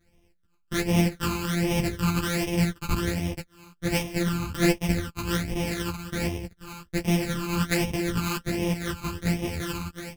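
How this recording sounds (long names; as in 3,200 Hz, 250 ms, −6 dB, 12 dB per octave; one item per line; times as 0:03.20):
a buzz of ramps at a fixed pitch in blocks of 256 samples
phaser sweep stages 12, 1.3 Hz, lowest notch 580–1,400 Hz
tremolo saw up 11 Hz, depth 35%
a shimmering, thickened sound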